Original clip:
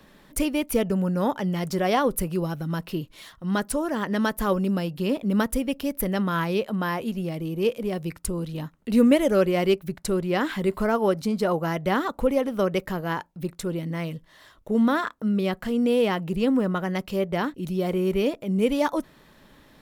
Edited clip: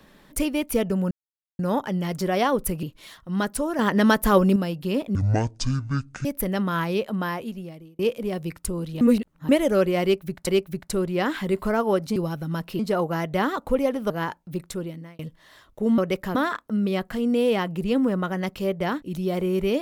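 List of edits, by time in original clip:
0:01.11: splice in silence 0.48 s
0:02.35–0:02.98: move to 0:11.31
0:03.94–0:04.71: clip gain +6 dB
0:05.30–0:05.85: play speed 50%
0:06.79–0:07.59: fade out
0:08.61–0:09.09: reverse
0:09.62–0:10.07: repeat, 2 plays
0:12.62–0:12.99: move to 0:14.87
0:13.58–0:14.08: fade out

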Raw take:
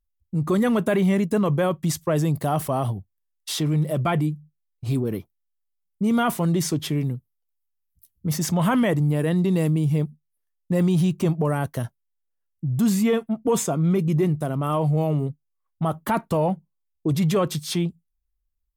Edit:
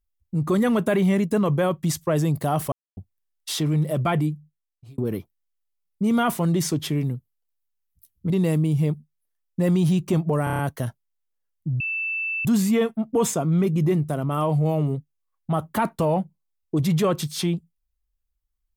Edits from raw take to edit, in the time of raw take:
0:02.72–0:02.97: silence
0:04.26–0:04.98: fade out
0:08.30–0:09.42: remove
0:11.56: stutter 0.03 s, 6 plays
0:12.77: insert tone 2,650 Hz −24 dBFS 0.65 s

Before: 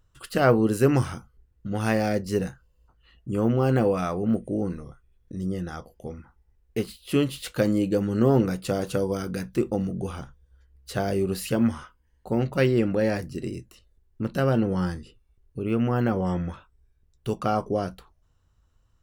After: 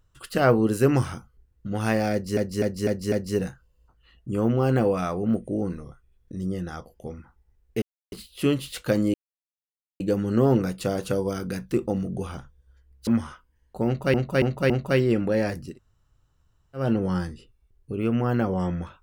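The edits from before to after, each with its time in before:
0:02.12–0:02.37: repeat, 5 plays
0:06.82: splice in silence 0.30 s
0:07.84: splice in silence 0.86 s
0:10.91–0:11.58: remove
0:12.37–0:12.65: repeat, 4 plays
0:13.38–0:14.48: fill with room tone, crossfade 0.16 s

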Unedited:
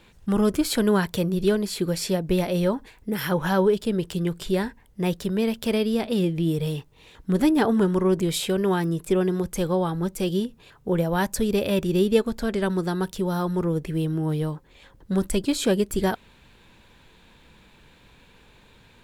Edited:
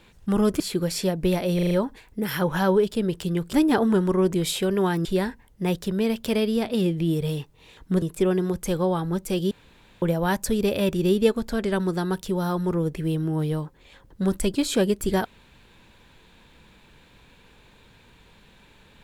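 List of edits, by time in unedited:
0:00.60–0:01.66: remove
0:02.61: stutter 0.04 s, 5 plays
0:07.40–0:08.92: move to 0:04.43
0:10.41–0:10.92: fill with room tone

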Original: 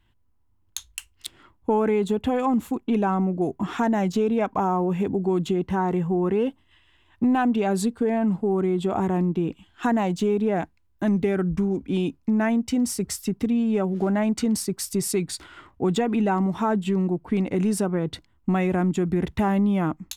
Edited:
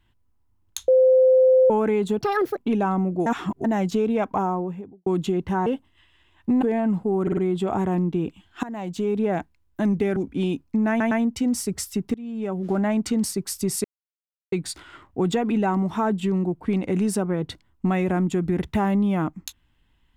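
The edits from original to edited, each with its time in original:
0:00.88–0:01.70: beep over 517 Hz −12 dBFS
0:02.21–0:02.79: play speed 160%
0:03.48–0:03.86: reverse
0:04.54–0:05.28: fade out and dull
0:05.88–0:06.40: remove
0:07.36–0:08.00: remove
0:08.60: stutter 0.05 s, 4 plays
0:09.86–0:10.43: fade in, from −17.5 dB
0:11.39–0:11.70: remove
0:12.43: stutter 0.11 s, 3 plays
0:13.46–0:14.07: fade in, from −20.5 dB
0:15.16: splice in silence 0.68 s

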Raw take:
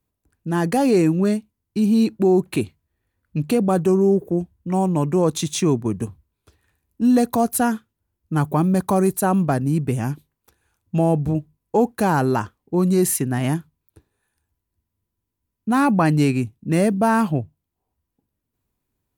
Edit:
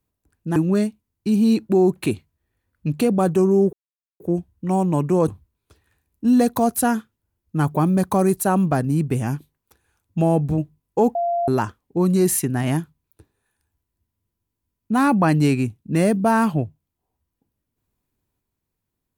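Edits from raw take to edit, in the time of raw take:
0:00.56–0:01.06: remove
0:04.23: splice in silence 0.47 s
0:05.31–0:06.05: remove
0:11.92–0:12.25: beep over 690 Hz −18.5 dBFS

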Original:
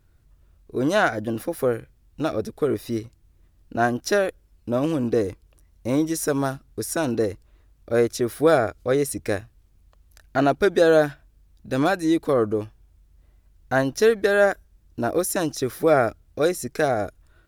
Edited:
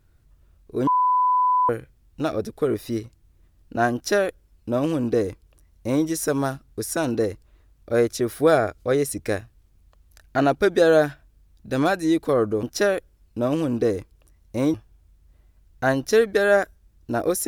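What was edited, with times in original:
0:00.87–0:01.69: beep over 1,000 Hz −16 dBFS
0:03.94–0:06.05: duplicate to 0:12.63

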